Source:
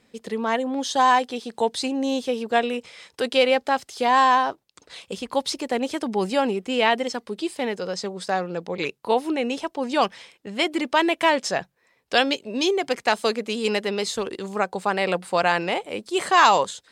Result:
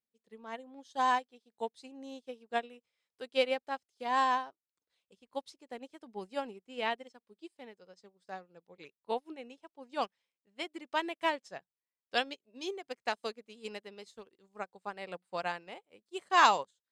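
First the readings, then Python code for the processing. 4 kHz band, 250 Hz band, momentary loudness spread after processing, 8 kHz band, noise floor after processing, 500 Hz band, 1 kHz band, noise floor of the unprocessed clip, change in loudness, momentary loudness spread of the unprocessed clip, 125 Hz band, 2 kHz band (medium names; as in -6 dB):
-13.5 dB, -19.0 dB, 21 LU, -16.5 dB, under -85 dBFS, -15.0 dB, -11.0 dB, -66 dBFS, -11.5 dB, 11 LU, under -20 dB, -12.0 dB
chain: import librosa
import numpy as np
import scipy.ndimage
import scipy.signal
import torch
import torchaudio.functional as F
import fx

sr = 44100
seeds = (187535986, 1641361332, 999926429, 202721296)

y = fx.upward_expand(x, sr, threshold_db=-35.0, expansion=2.5)
y = y * librosa.db_to_amplitude(-6.0)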